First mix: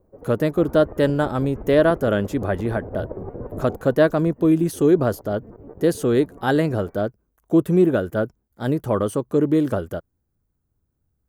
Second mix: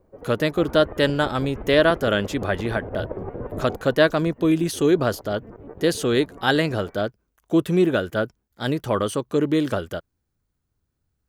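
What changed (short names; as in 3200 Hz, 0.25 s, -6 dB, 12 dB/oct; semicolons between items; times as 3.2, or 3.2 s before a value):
speech -3.0 dB; master: add bell 3500 Hz +13 dB 2.5 oct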